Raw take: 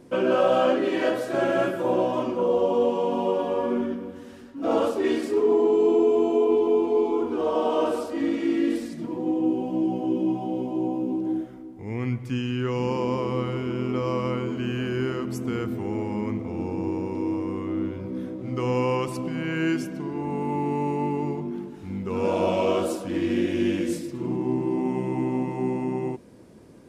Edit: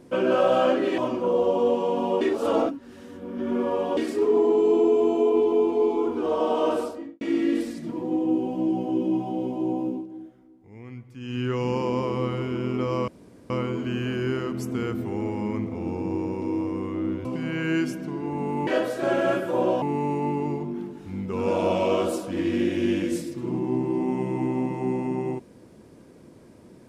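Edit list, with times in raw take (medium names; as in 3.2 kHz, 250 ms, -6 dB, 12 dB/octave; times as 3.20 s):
0.98–2.13 s: move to 20.59 s
3.36–5.12 s: reverse
7.93–8.36 s: studio fade out
11.02–12.55 s: dip -13 dB, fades 0.20 s
14.23 s: insert room tone 0.42 s
17.98–19.17 s: delete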